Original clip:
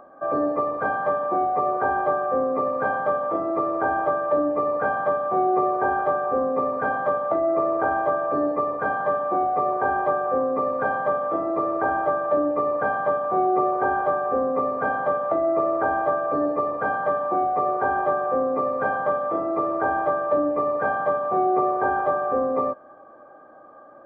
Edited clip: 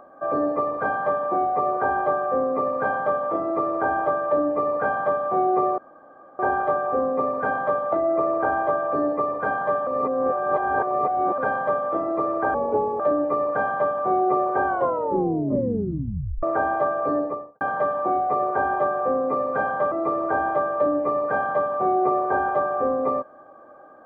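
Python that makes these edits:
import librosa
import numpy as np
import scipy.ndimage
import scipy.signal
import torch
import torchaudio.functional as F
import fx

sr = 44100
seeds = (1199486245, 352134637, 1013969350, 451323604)

y = fx.studio_fade_out(x, sr, start_s=16.38, length_s=0.49)
y = fx.edit(y, sr, fx.insert_room_tone(at_s=5.78, length_s=0.61),
    fx.reverse_span(start_s=9.26, length_s=1.51),
    fx.speed_span(start_s=11.93, length_s=0.33, speed=0.72),
    fx.tape_stop(start_s=13.92, length_s=1.77),
    fx.cut(start_s=19.18, length_s=0.25), tone=tone)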